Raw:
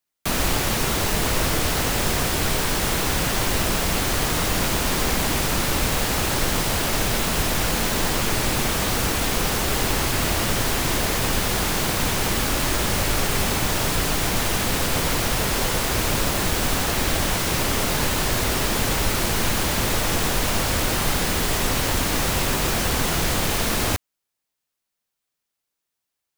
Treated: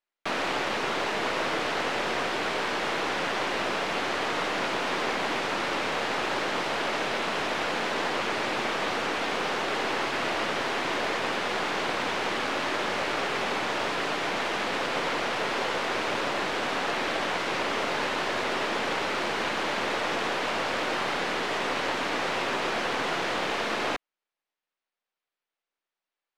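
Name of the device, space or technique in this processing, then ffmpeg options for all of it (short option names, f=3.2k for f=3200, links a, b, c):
crystal radio: -af "highpass=360,lowpass=3k,aeval=exprs='if(lt(val(0),0),0.708*val(0),val(0))':c=same"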